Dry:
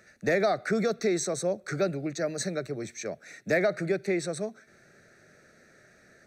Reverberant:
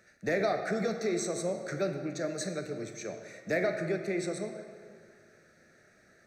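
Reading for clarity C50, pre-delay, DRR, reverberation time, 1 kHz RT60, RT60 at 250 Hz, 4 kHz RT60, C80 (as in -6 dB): 6.5 dB, 4 ms, 4.5 dB, 2.0 s, 2.0 s, 2.0 s, 1.4 s, 7.5 dB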